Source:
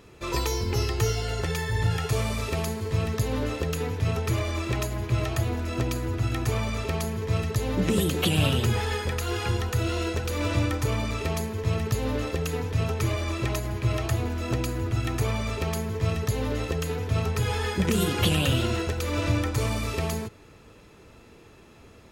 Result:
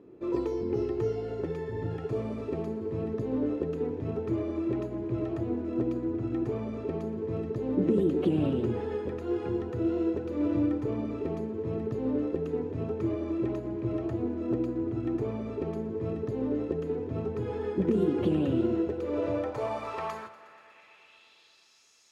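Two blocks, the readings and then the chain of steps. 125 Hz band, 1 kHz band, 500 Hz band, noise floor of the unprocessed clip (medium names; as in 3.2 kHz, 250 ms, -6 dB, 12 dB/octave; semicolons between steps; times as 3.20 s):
-10.5 dB, -8.0 dB, +0.5 dB, -51 dBFS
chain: band-pass sweep 320 Hz -> 6 kHz, 18.85–21.86 s; hum notches 50/100 Hz; thinning echo 120 ms, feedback 78%, high-pass 180 Hz, level -18 dB; trim +5.5 dB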